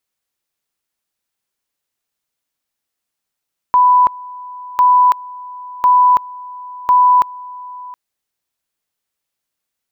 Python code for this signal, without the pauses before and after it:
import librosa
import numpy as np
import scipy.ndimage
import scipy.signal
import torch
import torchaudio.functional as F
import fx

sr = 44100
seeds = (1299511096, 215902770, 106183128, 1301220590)

y = fx.two_level_tone(sr, hz=994.0, level_db=-6.5, drop_db=21.5, high_s=0.33, low_s=0.72, rounds=4)